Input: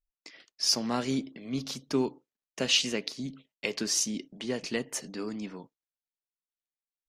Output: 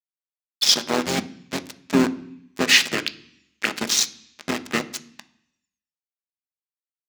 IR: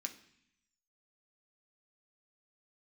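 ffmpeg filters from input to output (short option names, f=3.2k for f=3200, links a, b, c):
-filter_complex "[0:a]aeval=exprs='val(0)*gte(abs(val(0)),0.0531)':c=same,acontrast=31,highpass=100,asplit=3[a][b][c];[b]asetrate=29433,aresample=44100,atempo=1.49831,volume=-2dB[d];[c]asetrate=37084,aresample=44100,atempo=1.18921,volume=-13dB[e];[a][d][e]amix=inputs=3:normalize=0,asplit=2[f][g];[1:a]atrim=start_sample=2205,lowpass=8.5k[h];[g][h]afir=irnorm=-1:irlink=0,volume=3dB[i];[f][i]amix=inputs=2:normalize=0,volume=-3dB"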